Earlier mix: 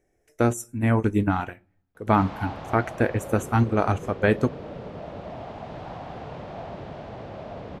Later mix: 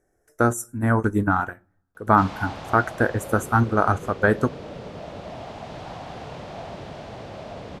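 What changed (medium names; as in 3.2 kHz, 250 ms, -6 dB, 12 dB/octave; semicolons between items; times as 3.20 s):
speech: add resonant high shelf 1.9 kHz -9 dB, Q 3; master: add peaking EQ 11 kHz +14.5 dB 2.3 oct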